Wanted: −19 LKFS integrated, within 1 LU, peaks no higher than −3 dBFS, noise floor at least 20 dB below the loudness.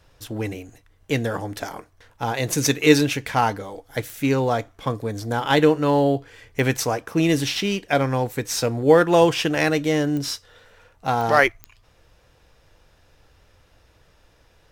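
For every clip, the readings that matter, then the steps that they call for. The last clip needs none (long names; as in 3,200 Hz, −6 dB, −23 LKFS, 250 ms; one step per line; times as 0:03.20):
number of clicks 5; integrated loudness −21.5 LKFS; sample peak −1.5 dBFS; target loudness −19.0 LKFS
→ click removal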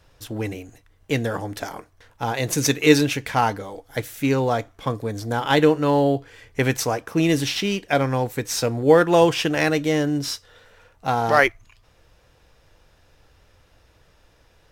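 number of clicks 0; integrated loudness −21.5 LKFS; sample peak −1.5 dBFS; target loudness −19.0 LKFS
→ level +2.5 dB
brickwall limiter −3 dBFS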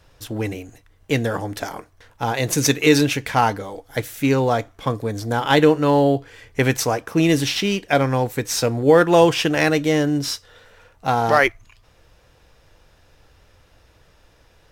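integrated loudness −19.5 LKFS; sample peak −3.0 dBFS; background noise floor −56 dBFS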